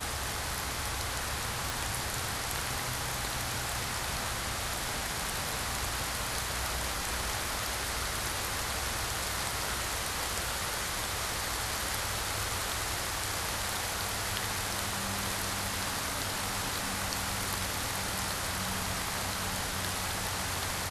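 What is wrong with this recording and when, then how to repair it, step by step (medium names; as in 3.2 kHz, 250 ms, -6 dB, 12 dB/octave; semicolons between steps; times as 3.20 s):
1.70 s: pop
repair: de-click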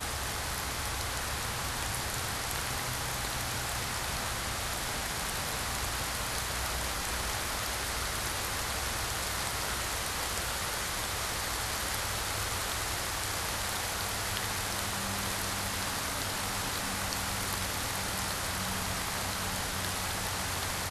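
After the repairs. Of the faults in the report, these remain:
nothing left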